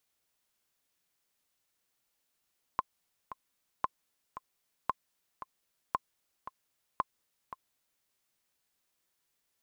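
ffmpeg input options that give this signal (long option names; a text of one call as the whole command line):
ffmpeg -f lavfi -i "aevalsrc='pow(10,(-15-13*gte(mod(t,2*60/114),60/114))/20)*sin(2*PI*1050*mod(t,60/114))*exp(-6.91*mod(t,60/114)/0.03)':duration=5.26:sample_rate=44100" out.wav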